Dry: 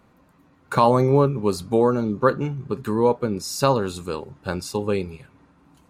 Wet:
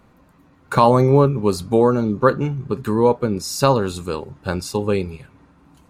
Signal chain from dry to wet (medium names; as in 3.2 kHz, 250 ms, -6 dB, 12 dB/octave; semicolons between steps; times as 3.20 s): bass shelf 72 Hz +6.5 dB; trim +3 dB